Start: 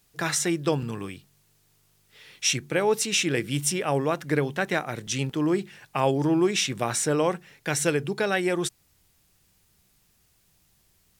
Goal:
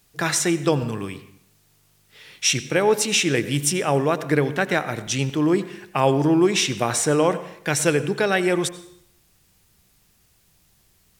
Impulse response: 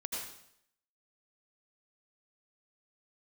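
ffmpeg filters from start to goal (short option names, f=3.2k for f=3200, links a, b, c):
-filter_complex "[0:a]asplit=2[a][b];[1:a]atrim=start_sample=2205,highshelf=f=4.7k:g=-6.5[c];[b][c]afir=irnorm=-1:irlink=0,volume=-11.5dB[d];[a][d]amix=inputs=2:normalize=0,volume=3dB"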